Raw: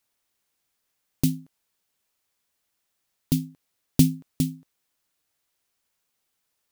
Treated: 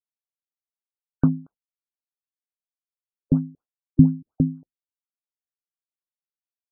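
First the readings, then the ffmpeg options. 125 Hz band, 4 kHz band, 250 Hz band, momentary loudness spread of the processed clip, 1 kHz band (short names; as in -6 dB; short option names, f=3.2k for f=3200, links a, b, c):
+4.0 dB, under -40 dB, +4.5 dB, 16 LU, n/a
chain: -filter_complex "[0:a]agate=range=-33dB:threshold=-42dB:ratio=3:detection=peak,crystalizer=i=9:c=0,asplit=2[a][b];[b]adynamicsmooth=sensitivity=2:basefreq=3.3k,volume=-2dB[c];[a][c]amix=inputs=2:normalize=0,afftfilt=real='re*lt(b*sr/1024,300*pow(1600/300,0.5+0.5*sin(2*PI*4.2*pts/sr)))':imag='im*lt(b*sr/1024,300*pow(1600/300,0.5+0.5*sin(2*PI*4.2*pts/sr)))':win_size=1024:overlap=0.75,volume=-1dB"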